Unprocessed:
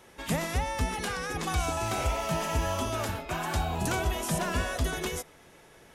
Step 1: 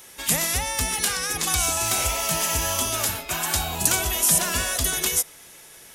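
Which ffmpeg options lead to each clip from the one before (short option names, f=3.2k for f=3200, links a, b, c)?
-af "crystalizer=i=7:c=0,volume=-1dB"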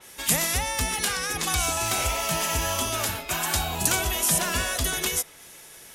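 -af "adynamicequalizer=threshold=0.0158:dfrequency=4500:dqfactor=0.7:tfrequency=4500:tqfactor=0.7:attack=5:release=100:ratio=0.375:range=2.5:mode=cutabove:tftype=highshelf"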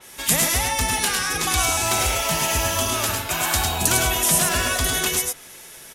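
-af "aecho=1:1:98|106:0.398|0.562,volume=3dB"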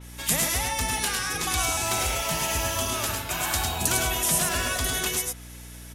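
-af "aeval=exprs='val(0)+0.0141*(sin(2*PI*60*n/s)+sin(2*PI*2*60*n/s)/2+sin(2*PI*3*60*n/s)/3+sin(2*PI*4*60*n/s)/4+sin(2*PI*5*60*n/s)/5)':c=same,volume=-5dB"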